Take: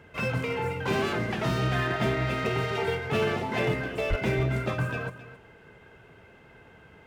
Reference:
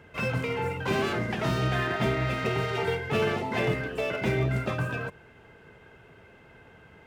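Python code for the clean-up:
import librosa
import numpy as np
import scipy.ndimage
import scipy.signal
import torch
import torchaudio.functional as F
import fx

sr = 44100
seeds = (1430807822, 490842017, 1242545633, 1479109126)

y = fx.fix_declip(x, sr, threshold_db=-18.5)
y = fx.highpass(y, sr, hz=140.0, slope=24, at=(4.09, 4.21), fade=0.02)
y = fx.fix_echo_inverse(y, sr, delay_ms=267, level_db=-14.0)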